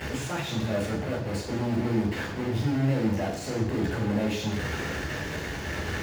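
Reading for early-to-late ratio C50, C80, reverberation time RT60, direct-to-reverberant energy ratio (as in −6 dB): 5.0 dB, 7.5 dB, 0.90 s, −3.0 dB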